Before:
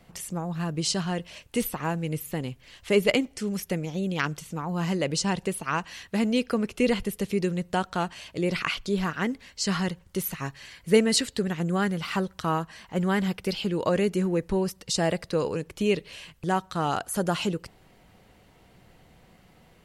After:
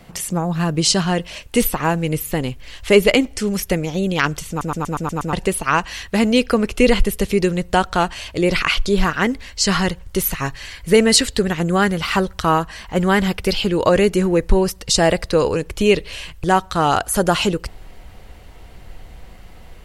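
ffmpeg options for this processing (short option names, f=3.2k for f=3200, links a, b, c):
-filter_complex "[0:a]asplit=8[a][b][c][d][e][f][g][h];[a]atrim=end=4.612[i];[b]atrim=start=4.488:end=4.612[j];[c]atrim=start=4.488:end=4.612[k];[d]atrim=start=4.488:end=4.612[l];[e]atrim=start=4.488:end=4.612[m];[f]atrim=start=4.488:end=4.612[n];[g]atrim=start=4.488:end=4.612[o];[h]atrim=start=5.328[p];[i][j]acrossfade=d=0.004:c1=hsin:c2=hsin[q];[q][k]acrossfade=d=0.004:c1=hsin:c2=hsin[r];[r][l]acrossfade=d=0.004:c1=hsin:c2=hsin[s];[s][m]acrossfade=d=0.004:c1=hsin:c2=hsin[t];[t][n]acrossfade=d=0.004:c1=hsin:c2=hsin[u];[u][o]acrossfade=d=0.004:c1=hsin:c2=hsin[v];[v][p]acrossfade=d=0.004:c1=hsin:c2=hsin,asubboost=boost=7:cutoff=57,alimiter=level_in=12dB:limit=-1dB:release=50:level=0:latency=1,volume=-1dB"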